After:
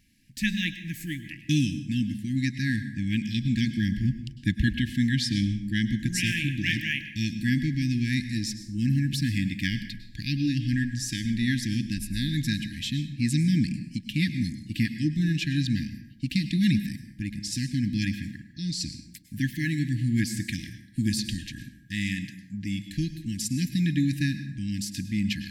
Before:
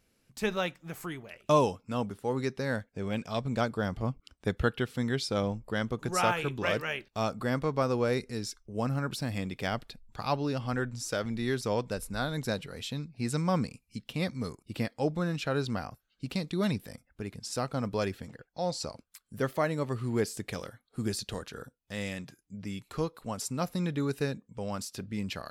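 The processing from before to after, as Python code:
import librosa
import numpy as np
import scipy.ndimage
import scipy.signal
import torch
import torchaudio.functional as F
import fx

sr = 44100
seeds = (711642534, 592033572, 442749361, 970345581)

y = fx.brickwall_bandstop(x, sr, low_hz=330.0, high_hz=1600.0)
y = fx.peak_eq(y, sr, hz=10000.0, db=-3.5, octaves=1.5)
y = fx.rev_plate(y, sr, seeds[0], rt60_s=0.83, hf_ratio=0.6, predelay_ms=90, drr_db=10.0)
y = F.gain(torch.from_numpy(y), 7.5).numpy()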